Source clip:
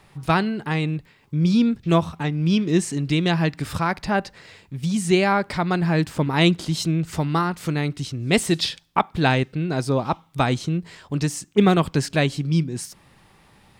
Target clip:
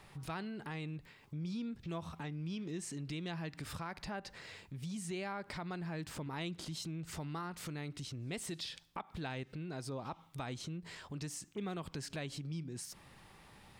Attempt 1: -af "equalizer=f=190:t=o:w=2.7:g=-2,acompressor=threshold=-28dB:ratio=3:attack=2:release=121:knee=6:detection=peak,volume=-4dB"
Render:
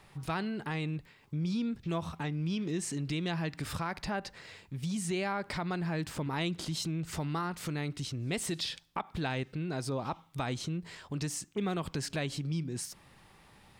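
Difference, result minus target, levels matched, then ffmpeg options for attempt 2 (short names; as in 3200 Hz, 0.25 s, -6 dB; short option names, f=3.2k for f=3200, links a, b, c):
compressor: peak gain reduction -7.5 dB
-af "equalizer=f=190:t=o:w=2.7:g=-2,acompressor=threshold=-39.5dB:ratio=3:attack=2:release=121:knee=6:detection=peak,volume=-4dB"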